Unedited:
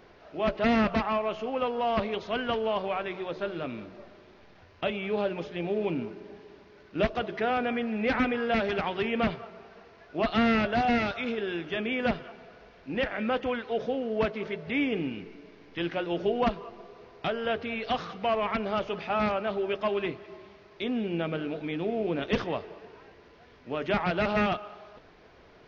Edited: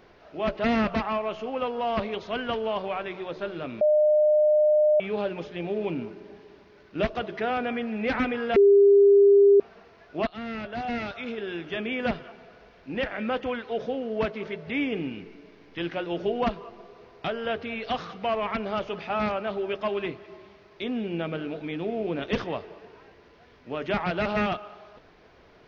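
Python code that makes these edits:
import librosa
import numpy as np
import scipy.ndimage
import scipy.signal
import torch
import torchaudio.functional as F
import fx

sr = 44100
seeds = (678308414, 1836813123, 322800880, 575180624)

y = fx.edit(x, sr, fx.bleep(start_s=3.81, length_s=1.19, hz=606.0, db=-16.5),
    fx.bleep(start_s=8.56, length_s=1.04, hz=401.0, db=-12.5),
    fx.fade_in_from(start_s=10.27, length_s=1.46, floor_db=-16.0), tone=tone)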